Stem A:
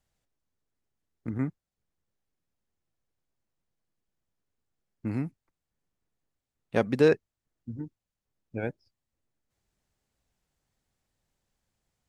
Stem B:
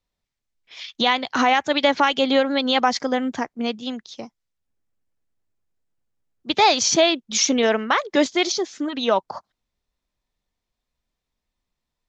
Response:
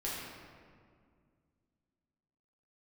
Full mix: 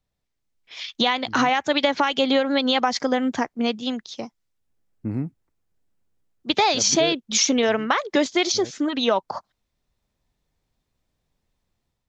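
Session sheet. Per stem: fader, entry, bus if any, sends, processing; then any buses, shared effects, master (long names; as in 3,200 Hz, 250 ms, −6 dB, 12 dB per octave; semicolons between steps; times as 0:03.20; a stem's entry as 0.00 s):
−6.5 dB, 0.00 s, no send, tilt shelving filter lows +6 dB, about 1,100 Hz; automatic ducking −11 dB, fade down 0.25 s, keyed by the second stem
−2.5 dB, 0.00 s, no send, downward compressor, threshold −18 dBFS, peak gain reduction 7 dB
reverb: not used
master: automatic gain control gain up to 5 dB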